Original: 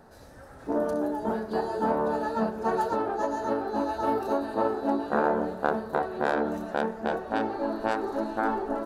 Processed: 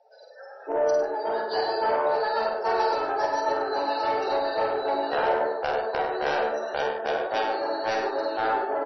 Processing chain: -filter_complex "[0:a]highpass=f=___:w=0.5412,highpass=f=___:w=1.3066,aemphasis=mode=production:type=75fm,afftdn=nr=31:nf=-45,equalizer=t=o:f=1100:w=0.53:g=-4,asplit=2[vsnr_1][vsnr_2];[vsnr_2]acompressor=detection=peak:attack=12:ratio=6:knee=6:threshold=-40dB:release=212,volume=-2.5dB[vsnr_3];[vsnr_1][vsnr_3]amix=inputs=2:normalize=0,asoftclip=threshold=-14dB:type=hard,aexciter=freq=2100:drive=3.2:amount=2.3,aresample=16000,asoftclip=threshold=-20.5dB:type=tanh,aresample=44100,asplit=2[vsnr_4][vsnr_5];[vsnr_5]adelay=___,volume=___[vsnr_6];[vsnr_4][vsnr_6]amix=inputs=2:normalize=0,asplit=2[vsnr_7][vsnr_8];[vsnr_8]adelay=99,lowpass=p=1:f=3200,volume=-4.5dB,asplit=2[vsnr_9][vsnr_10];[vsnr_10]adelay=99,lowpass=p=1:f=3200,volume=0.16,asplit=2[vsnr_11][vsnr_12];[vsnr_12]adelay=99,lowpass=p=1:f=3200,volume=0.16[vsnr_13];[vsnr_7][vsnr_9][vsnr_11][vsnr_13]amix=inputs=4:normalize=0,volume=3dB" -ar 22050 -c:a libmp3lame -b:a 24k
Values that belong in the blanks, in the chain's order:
430, 430, 49, -5dB